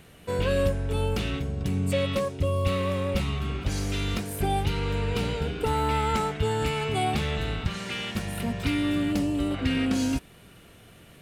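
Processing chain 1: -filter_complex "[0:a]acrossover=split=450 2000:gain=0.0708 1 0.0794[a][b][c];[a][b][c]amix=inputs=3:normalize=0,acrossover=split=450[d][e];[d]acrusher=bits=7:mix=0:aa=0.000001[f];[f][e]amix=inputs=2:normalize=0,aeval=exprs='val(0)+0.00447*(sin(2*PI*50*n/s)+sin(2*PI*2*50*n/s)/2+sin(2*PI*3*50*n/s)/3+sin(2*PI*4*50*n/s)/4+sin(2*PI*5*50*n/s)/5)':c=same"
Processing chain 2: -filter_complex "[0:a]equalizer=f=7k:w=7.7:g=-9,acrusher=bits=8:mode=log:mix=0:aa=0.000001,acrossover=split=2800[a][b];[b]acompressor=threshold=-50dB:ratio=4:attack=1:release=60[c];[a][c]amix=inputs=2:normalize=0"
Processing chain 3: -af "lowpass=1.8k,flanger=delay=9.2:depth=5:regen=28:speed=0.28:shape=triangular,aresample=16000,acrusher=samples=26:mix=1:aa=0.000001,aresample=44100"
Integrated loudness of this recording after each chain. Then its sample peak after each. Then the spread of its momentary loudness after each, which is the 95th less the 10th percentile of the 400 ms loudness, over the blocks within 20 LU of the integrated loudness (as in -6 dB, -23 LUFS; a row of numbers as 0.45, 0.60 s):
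-34.5, -28.0, -31.0 LUFS; -19.0, -12.5, -16.0 dBFS; 12, 6, 7 LU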